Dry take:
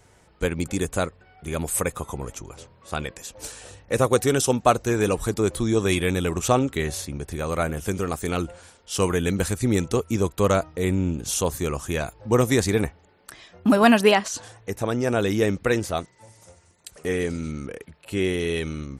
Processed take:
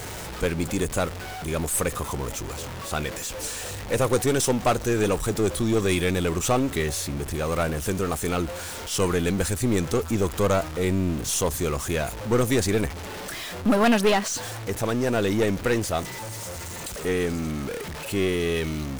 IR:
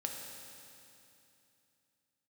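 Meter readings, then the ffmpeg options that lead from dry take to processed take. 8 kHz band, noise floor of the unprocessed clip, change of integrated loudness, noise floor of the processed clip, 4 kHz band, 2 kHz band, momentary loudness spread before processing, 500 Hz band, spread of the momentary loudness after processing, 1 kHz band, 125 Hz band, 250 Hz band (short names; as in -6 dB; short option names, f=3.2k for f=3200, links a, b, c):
+1.5 dB, -57 dBFS, -1.5 dB, -35 dBFS, +0.5 dB, -1.0 dB, 13 LU, -1.0 dB, 10 LU, -2.0 dB, -0.5 dB, -1.0 dB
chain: -af "aeval=exprs='val(0)+0.5*0.0398*sgn(val(0))':c=same,aeval=exprs='(tanh(5.01*val(0)+0.45)-tanh(0.45))/5.01':c=same"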